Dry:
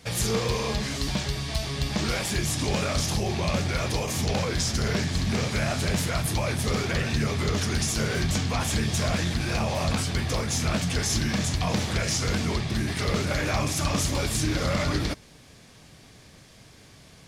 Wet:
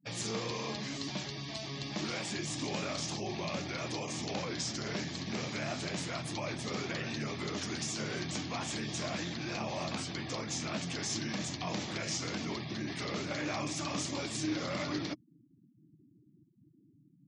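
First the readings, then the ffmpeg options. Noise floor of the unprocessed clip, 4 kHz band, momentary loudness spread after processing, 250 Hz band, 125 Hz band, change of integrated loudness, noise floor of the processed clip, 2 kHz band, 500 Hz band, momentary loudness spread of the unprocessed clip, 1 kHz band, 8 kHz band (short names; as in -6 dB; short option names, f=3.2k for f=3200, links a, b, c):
-51 dBFS, -8.0 dB, 3 LU, -8.5 dB, -14.5 dB, -10.0 dB, -65 dBFS, -9.0 dB, -9.5 dB, 2 LU, -8.5 dB, -10.0 dB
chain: -filter_complex "[0:a]acrossover=split=350|730|5500[a][b][c][d];[a]asoftclip=type=tanh:threshold=-26.5dB[e];[e][b][c][d]amix=inputs=4:normalize=0,highpass=f=120:w=0.5412,highpass=f=120:w=1.3066,equalizer=f=310:t=q:w=4:g=7,equalizer=f=460:t=q:w=4:g=-4,equalizer=f=1.5k:t=q:w=4:g=-3,lowpass=f=8.1k:w=0.5412,lowpass=f=8.1k:w=1.3066,afftfilt=real='re*gte(hypot(re,im),0.01)':imag='im*gte(hypot(re,im),0.01)':win_size=1024:overlap=0.75,volume=-8dB"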